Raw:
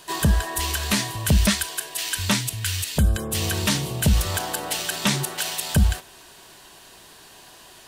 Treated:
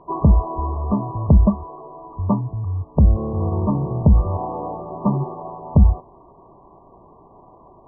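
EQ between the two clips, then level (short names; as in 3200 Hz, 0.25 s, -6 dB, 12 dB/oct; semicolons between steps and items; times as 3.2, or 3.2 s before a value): brick-wall FIR low-pass 1200 Hz; air absorption 370 m; +6.0 dB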